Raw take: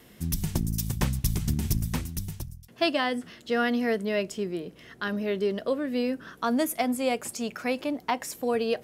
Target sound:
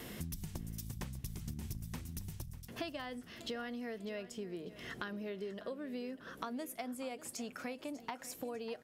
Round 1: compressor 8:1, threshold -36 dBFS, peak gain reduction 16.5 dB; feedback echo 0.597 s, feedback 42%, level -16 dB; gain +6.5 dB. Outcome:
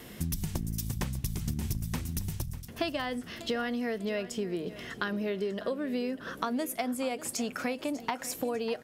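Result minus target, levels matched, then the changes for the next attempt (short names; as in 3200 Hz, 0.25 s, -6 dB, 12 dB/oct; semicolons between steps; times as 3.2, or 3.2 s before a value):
compressor: peak gain reduction -10 dB
change: compressor 8:1, threshold -47.5 dBFS, peak gain reduction 26.5 dB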